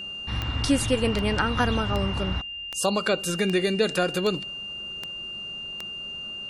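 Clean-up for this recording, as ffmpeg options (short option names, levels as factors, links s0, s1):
-af "adeclick=t=4,bandreject=f=2800:w=30"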